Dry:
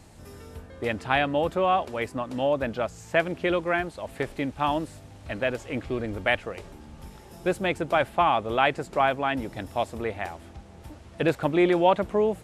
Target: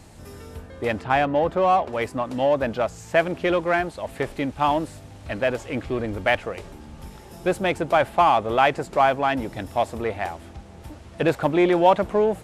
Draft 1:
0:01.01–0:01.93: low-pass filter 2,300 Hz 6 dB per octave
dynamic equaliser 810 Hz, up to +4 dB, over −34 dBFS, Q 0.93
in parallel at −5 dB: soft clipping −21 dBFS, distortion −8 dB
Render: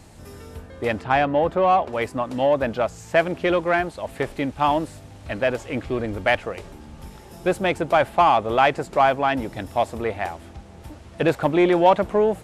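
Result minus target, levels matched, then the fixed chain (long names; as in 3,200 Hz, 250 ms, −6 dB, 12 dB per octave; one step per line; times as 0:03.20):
soft clipping: distortion −4 dB
0:01.01–0:01.93: low-pass filter 2,300 Hz 6 dB per octave
dynamic equaliser 810 Hz, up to +4 dB, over −34 dBFS, Q 0.93
in parallel at −5 dB: soft clipping −28 dBFS, distortion −4 dB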